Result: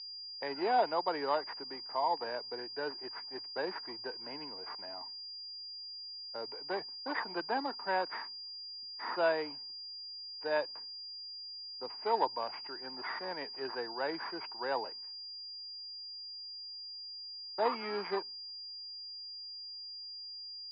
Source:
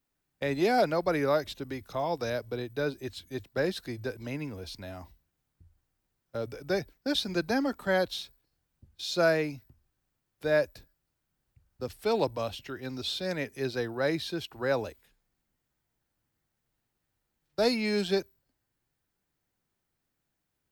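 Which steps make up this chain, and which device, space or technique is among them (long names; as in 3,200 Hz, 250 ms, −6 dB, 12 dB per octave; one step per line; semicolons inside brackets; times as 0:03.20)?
toy sound module (linearly interpolated sample-rate reduction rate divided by 8×; switching amplifier with a slow clock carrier 4,800 Hz; loudspeaker in its box 560–5,000 Hz, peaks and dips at 570 Hz −7 dB, 930 Hz +10 dB, 1,300 Hz −5 dB, 2,700 Hz +3 dB)
high-shelf EQ 4,300 Hz −9.5 dB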